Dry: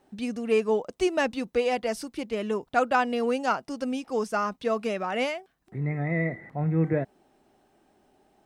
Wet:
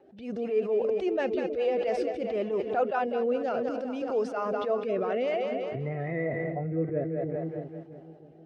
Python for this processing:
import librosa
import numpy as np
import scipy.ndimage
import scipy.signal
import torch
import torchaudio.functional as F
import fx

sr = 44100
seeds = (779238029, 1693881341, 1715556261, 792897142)

p1 = fx.spec_quant(x, sr, step_db=15)
p2 = scipy.signal.sosfilt(scipy.signal.butter(2, 3500.0, 'lowpass', fs=sr, output='sos'), p1)
p3 = fx.echo_split(p2, sr, split_hz=400.0, low_ms=321, high_ms=198, feedback_pct=52, wet_db=-11.0)
p4 = fx.rotary_switch(p3, sr, hz=5.5, then_hz=0.6, switch_at_s=1.37)
p5 = fx.over_compress(p4, sr, threshold_db=-38.0, ratio=-1.0)
p6 = p4 + F.gain(torch.from_numpy(p5), 2.0).numpy()
p7 = scipy.signal.sosfilt(scipy.signal.butter(2, 47.0, 'highpass', fs=sr, output='sos'), p6)
p8 = fx.band_shelf(p7, sr, hz=510.0, db=8.5, octaves=1.3)
p9 = fx.attack_slew(p8, sr, db_per_s=120.0)
y = F.gain(torch.from_numpy(p9), -7.0).numpy()